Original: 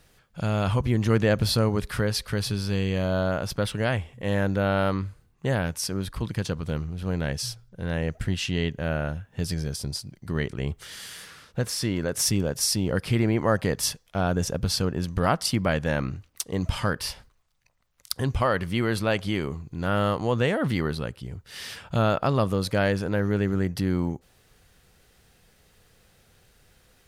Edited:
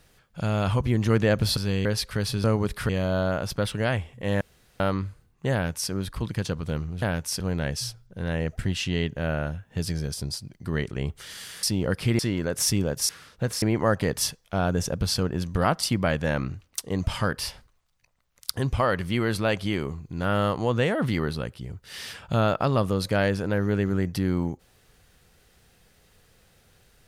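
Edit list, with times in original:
1.57–2.02 s: swap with 2.61–2.89 s
4.41–4.80 s: room tone
5.53–5.91 s: copy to 7.02 s
11.25–11.78 s: swap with 12.68–13.24 s

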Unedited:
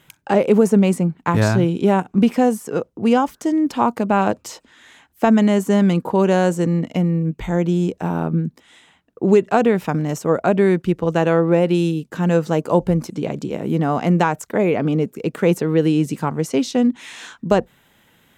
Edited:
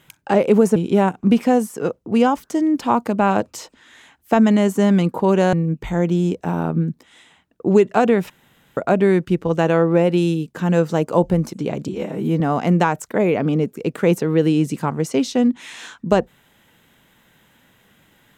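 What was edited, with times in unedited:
0.76–1.67 s: delete
6.44–7.10 s: delete
9.87–10.34 s: room tone
13.45–13.80 s: stretch 1.5×

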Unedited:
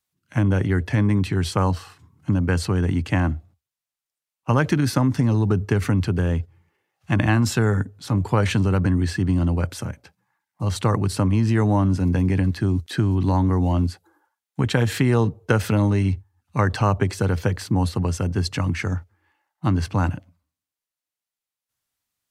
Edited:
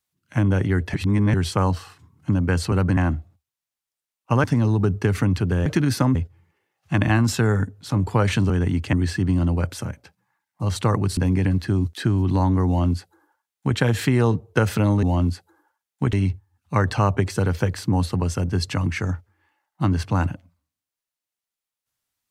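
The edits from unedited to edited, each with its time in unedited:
0.94–1.34 s: reverse
2.72–3.15 s: swap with 8.68–8.93 s
4.62–5.11 s: move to 6.33 s
11.17–12.10 s: delete
13.60–14.70 s: copy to 15.96 s

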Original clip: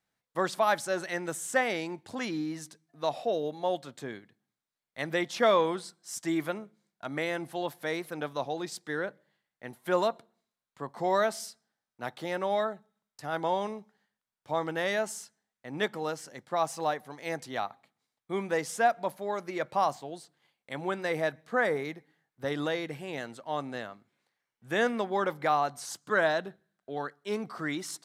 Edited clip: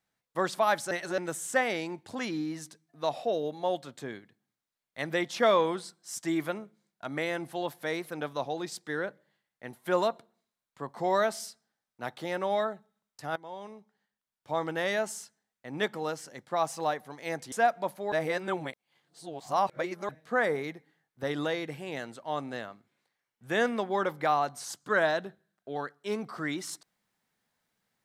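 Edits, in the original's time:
0.91–1.18 s: reverse
13.36–14.63 s: fade in linear, from -20 dB
17.52–18.73 s: delete
19.33–21.30 s: reverse

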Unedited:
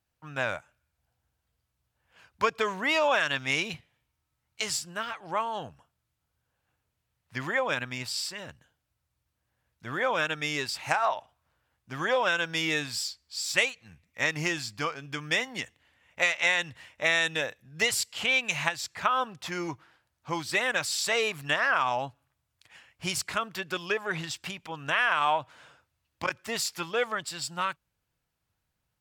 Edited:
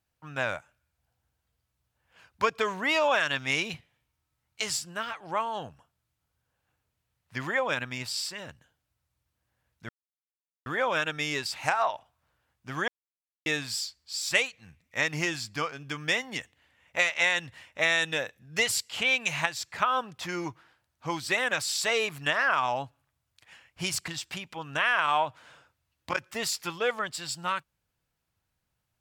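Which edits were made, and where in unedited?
9.89 s: insert silence 0.77 s
12.11–12.69 s: mute
23.31–24.21 s: delete

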